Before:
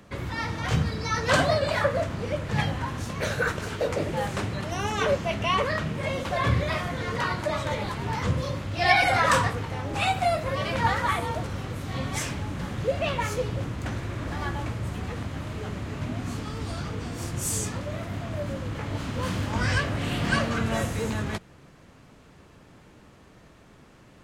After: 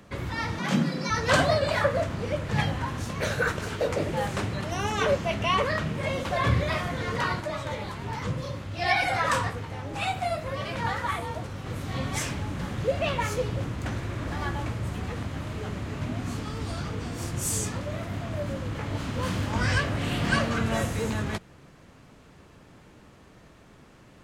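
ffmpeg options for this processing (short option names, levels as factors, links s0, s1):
-filter_complex "[0:a]asettb=1/sr,asplit=3[s0][s1][s2];[s0]atrim=end=0.594[s3];[s1]atrim=start=0.59:end=1.1,asetpts=PTS-STARTPTS,afade=t=in:d=0.004:c=qsin,afade=t=out:st=0.506:d=0.004:c=qsin,afreqshift=77[s4];[s2]atrim=start=1.096[s5];[s3][s4]acrossfade=d=0.004:c1=hsin:c2=qsin[s6];[s6][s5]acrossfade=d=0.004:c1=qsin:c2=hsin,asplit=3[s7][s8][s9];[s7]afade=t=out:st=7.39:d=0.02[s10];[s8]flanger=delay=6:depth=6.2:regen=-62:speed=1.2:shape=sinusoidal,afade=t=in:st=7.39:d=0.02,afade=t=out:st=11.65:d=0.02[s11];[s9]afade=t=in:st=11.65:d=0.02[s12];[s10][s11][s12]amix=inputs=3:normalize=0"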